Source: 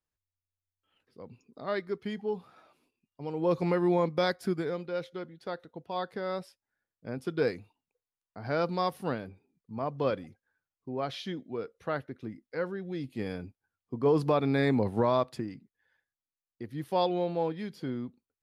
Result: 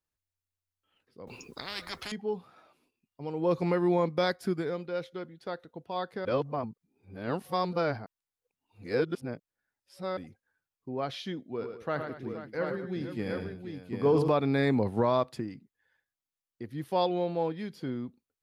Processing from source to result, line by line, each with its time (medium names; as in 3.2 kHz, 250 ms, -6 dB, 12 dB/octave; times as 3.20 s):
1.27–2.12 s: spectrum-flattening compressor 10:1
6.25–10.17 s: reverse
11.50–14.28 s: multi-tap echo 79/111/209/478/731 ms -13/-7.5/-15/-13/-5.5 dB